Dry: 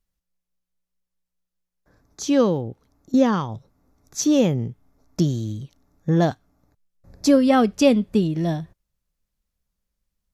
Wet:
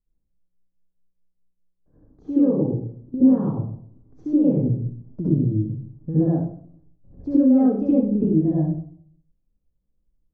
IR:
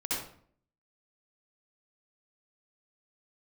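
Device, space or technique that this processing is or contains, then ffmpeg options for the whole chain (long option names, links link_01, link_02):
television next door: -filter_complex "[0:a]acompressor=threshold=-21dB:ratio=5,lowpass=430[link_01];[1:a]atrim=start_sample=2205[link_02];[link_01][link_02]afir=irnorm=-1:irlink=0"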